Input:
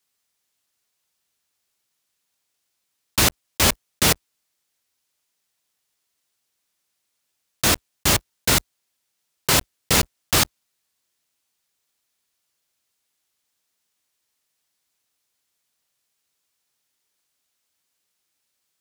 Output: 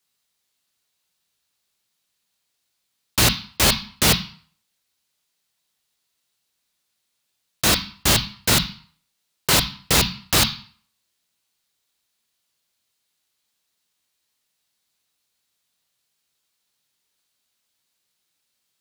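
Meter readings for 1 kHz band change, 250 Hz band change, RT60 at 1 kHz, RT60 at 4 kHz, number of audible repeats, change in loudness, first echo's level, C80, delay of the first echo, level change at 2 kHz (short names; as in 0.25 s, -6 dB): +0.5 dB, +1.5 dB, 0.55 s, 0.40 s, none, +1.0 dB, none, 17.0 dB, none, +1.0 dB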